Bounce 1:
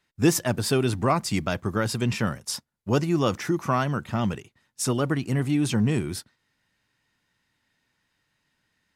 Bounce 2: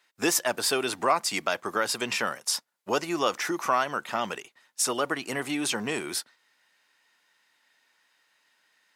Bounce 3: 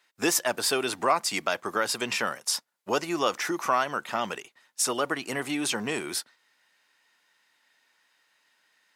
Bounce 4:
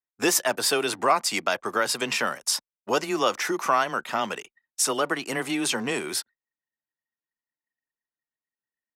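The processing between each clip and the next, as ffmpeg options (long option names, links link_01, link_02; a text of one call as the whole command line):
ffmpeg -i in.wav -filter_complex "[0:a]highpass=560,asplit=2[link_01][link_02];[link_02]acompressor=threshold=-34dB:ratio=6,volume=3dB[link_03];[link_01][link_03]amix=inputs=2:normalize=0,volume=-1dB" out.wav
ffmpeg -i in.wav -af anull out.wav
ffmpeg -i in.wav -af "anlmdn=0.00398,afreqshift=13,volume=2.5dB" out.wav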